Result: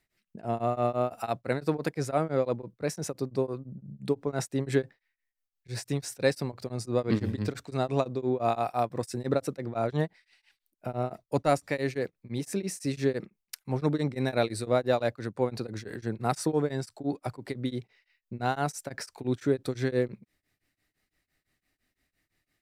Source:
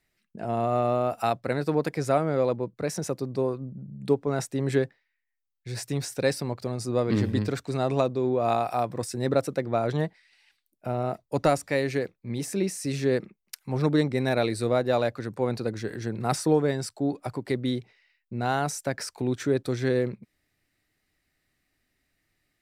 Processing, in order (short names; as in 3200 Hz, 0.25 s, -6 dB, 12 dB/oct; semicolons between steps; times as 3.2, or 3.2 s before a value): beating tremolo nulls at 5.9 Hz